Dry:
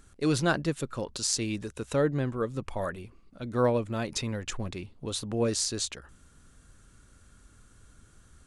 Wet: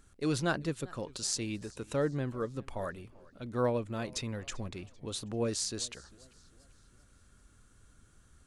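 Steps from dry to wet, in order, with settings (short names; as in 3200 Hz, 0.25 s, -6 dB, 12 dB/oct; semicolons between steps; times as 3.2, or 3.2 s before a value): warbling echo 0.394 s, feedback 43%, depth 128 cents, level -23 dB; gain -5 dB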